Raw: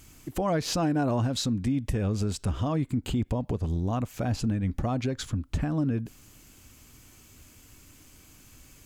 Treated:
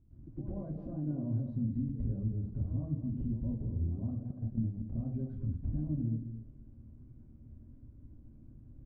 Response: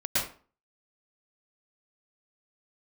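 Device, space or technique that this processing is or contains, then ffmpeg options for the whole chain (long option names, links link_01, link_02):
television next door: -filter_complex "[0:a]acompressor=threshold=-34dB:ratio=5,lowpass=270[link_01];[1:a]atrim=start_sample=2205[link_02];[link_01][link_02]afir=irnorm=-1:irlink=0,asettb=1/sr,asplit=3[link_03][link_04][link_05];[link_03]atrim=end=4.314[link_06];[link_04]atrim=start=4.31:end=5.05,asetpts=PTS-STARTPTS,afade=type=in:duration=0.004:curve=qsin,afade=type=out:start_time=0.736:duration=0.004:curve=qsin,agate=range=-18dB:threshold=-26dB:ratio=16:detection=peak[link_07];[link_05]atrim=start=5.046[link_08];[link_06][link_07]acrossfade=duration=0.004:curve1=hsin:curve2=qsin[link_09];[link_09][link_08]acrossfade=duration=0.004:curve1=qsin:curve2=hsin,highshelf=frequency=4600:gain=-6.5,aecho=1:1:219:0.316,volume=-8dB"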